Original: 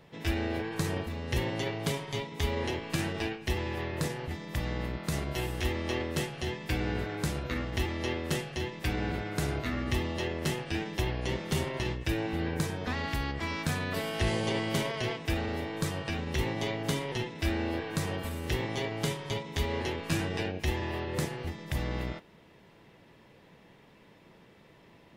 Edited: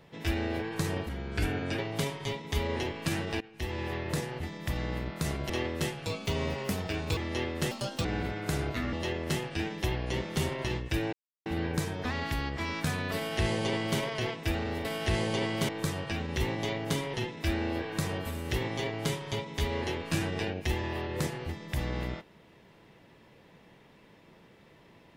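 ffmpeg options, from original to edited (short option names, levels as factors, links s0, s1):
-filter_complex "[0:a]asplit=13[s0][s1][s2][s3][s4][s5][s6][s7][s8][s9][s10][s11][s12];[s0]atrim=end=1.094[s13];[s1]atrim=start=1.09:end=1.66,asetpts=PTS-STARTPTS,asetrate=36162,aresample=44100[s14];[s2]atrim=start=1.656:end=3.28,asetpts=PTS-STARTPTS,afade=t=out:st=1.62:d=0.004:c=hsin:silence=0.0841395[s15];[s3]atrim=start=3.28:end=5.372,asetpts=PTS-STARTPTS,afade=t=in:d=0.42:silence=0.0841395[s16];[s4]atrim=start=5.848:end=6.414[s17];[s5]atrim=start=6.41:end=7.86,asetpts=PTS-STARTPTS,asetrate=57330,aresample=44100,atrim=end_sample=49188,asetpts=PTS-STARTPTS[s18];[s6]atrim=start=7.856:end=8.404[s19];[s7]atrim=start=8.4:end=8.94,asetpts=PTS-STARTPTS,asetrate=70560,aresample=44100[s20];[s8]atrim=start=8.936:end=9.822[s21];[s9]atrim=start=10.078:end=12.28,asetpts=PTS-STARTPTS,afade=t=out:st=2.198:d=0.004:c=hsin,apad=pad_dur=0.33[s22];[s10]atrim=start=12.28:end=15.672,asetpts=PTS-STARTPTS,afade=t=in:d=0.004:c=hsin[s23];[s11]atrim=start=13.978:end=14.822[s24];[s12]atrim=start=15.668[s25];[s13][s14]acrossfade=d=0.004:c1=hsin:c2=hsin[s26];[s15][s16]concat=n=2:v=0:a=1[s27];[s26][s27]acrossfade=d=0.004:c1=hsin:c2=hsin[s28];[s28][s17]acrossfade=d=0.004:c1=hsin:c2=hsin[s29];[s29][s18]acrossfade=d=0.004:c1=hsin:c2=hsin[s30];[s30][s19]acrossfade=d=0.004:c1=hsin:c2=hsin[s31];[s31][s20]acrossfade=d=0.004:c1=hsin:c2=hsin[s32];[s32][s21]acrossfade=d=0.004:c1=hsin:c2=hsin[s33];[s22][s23]concat=n=2:v=0:a=1[s34];[s33][s34]acrossfade=d=0.004:c1=hsin:c2=hsin[s35];[s35][s24]acrossfade=d=0.004:c1=hsin:c2=hsin[s36];[s36][s25]acrossfade=d=0.004:c1=hsin:c2=hsin"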